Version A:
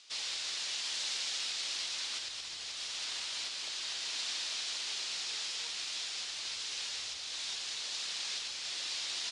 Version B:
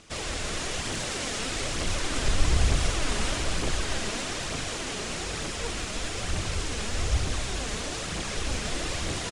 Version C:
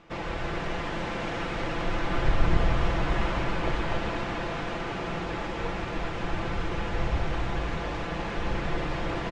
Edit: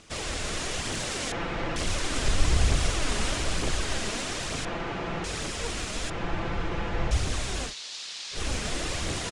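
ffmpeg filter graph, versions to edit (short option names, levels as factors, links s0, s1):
-filter_complex "[2:a]asplit=3[s0][s1][s2];[1:a]asplit=5[s3][s4][s5][s6][s7];[s3]atrim=end=1.322[s8];[s0]atrim=start=1.318:end=1.762[s9];[s4]atrim=start=1.758:end=4.652[s10];[s1]atrim=start=4.648:end=5.242[s11];[s5]atrim=start=5.238:end=6.102[s12];[s2]atrim=start=6.098:end=7.112[s13];[s6]atrim=start=7.108:end=7.74[s14];[0:a]atrim=start=7.64:end=8.41[s15];[s7]atrim=start=8.31[s16];[s8][s9]acrossfade=d=0.004:c1=hsin:c2=hsin[s17];[s17][s10]acrossfade=d=0.004:c1=hsin:c2=hsin[s18];[s18][s11]acrossfade=d=0.004:c1=hsin:c2=hsin[s19];[s19][s12]acrossfade=d=0.004:c1=hsin:c2=hsin[s20];[s20][s13]acrossfade=d=0.004:c1=hsin:c2=hsin[s21];[s21][s14]acrossfade=d=0.004:c1=hsin:c2=hsin[s22];[s22][s15]acrossfade=d=0.1:c1=tri:c2=tri[s23];[s23][s16]acrossfade=d=0.1:c1=tri:c2=tri"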